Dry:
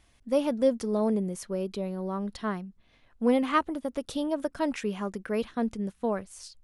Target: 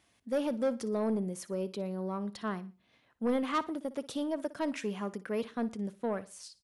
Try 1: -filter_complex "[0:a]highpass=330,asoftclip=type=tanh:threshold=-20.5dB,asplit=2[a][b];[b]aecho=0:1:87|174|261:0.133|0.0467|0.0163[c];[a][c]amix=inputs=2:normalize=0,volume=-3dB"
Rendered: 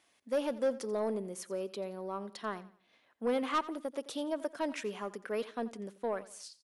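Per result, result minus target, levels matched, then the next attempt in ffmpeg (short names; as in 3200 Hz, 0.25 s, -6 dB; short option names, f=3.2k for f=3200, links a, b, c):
echo 28 ms late; 125 Hz band -7.0 dB
-filter_complex "[0:a]highpass=330,asoftclip=type=tanh:threshold=-20.5dB,asplit=2[a][b];[b]aecho=0:1:59|118|177:0.133|0.0467|0.0163[c];[a][c]amix=inputs=2:normalize=0,volume=-3dB"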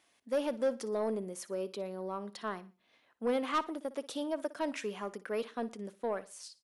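125 Hz band -7.0 dB
-filter_complex "[0:a]highpass=130,asoftclip=type=tanh:threshold=-20.5dB,asplit=2[a][b];[b]aecho=0:1:59|118|177:0.133|0.0467|0.0163[c];[a][c]amix=inputs=2:normalize=0,volume=-3dB"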